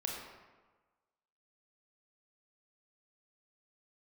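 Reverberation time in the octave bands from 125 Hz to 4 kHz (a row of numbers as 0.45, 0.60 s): 1.3, 1.2, 1.3, 1.3, 1.1, 0.80 s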